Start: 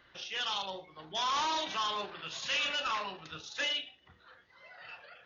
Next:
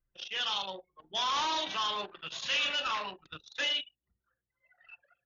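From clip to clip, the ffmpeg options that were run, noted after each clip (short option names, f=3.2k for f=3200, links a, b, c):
-af "anlmdn=0.158,equalizer=f=3.3k:t=o:w=0.77:g=3"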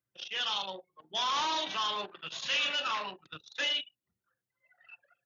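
-af "highpass=f=99:w=0.5412,highpass=f=99:w=1.3066"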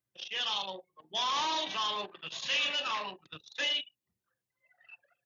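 -af "equalizer=f=1.4k:t=o:w=0.2:g=-8.5"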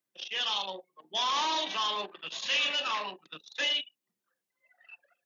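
-af "highpass=f=190:w=0.5412,highpass=f=190:w=1.3066,volume=2dB"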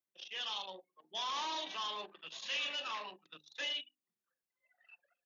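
-af "bandreject=f=50:t=h:w=6,bandreject=f=100:t=h:w=6,bandreject=f=150:t=h:w=6,bandreject=f=200:t=h:w=6,bandreject=f=250:t=h:w=6,bandreject=f=300:t=h:w=6,volume=-9dB"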